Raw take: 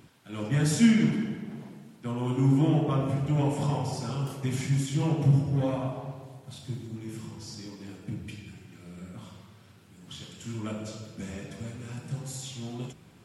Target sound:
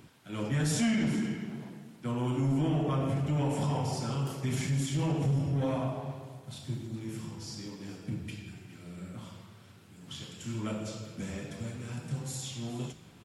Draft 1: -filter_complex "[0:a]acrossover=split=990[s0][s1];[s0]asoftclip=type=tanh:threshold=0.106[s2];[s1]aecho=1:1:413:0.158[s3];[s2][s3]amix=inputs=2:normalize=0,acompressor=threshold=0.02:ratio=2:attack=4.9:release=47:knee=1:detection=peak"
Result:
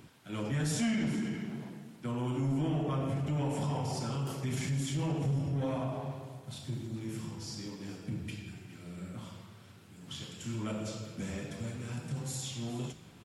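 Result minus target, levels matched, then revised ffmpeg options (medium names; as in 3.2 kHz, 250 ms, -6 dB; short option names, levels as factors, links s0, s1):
compression: peak gain reduction +3 dB
-filter_complex "[0:a]acrossover=split=990[s0][s1];[s0]asoftclip=type=tanh:threshold=0.106[s2];[s1]aecho=1:1:413:0.158[s3];[s2][s3]amix=inputs=2:normalize=0,acompressor=threshold=0.0398:ratio=2:attack=4.9:release=47:knee=1:detection=peak"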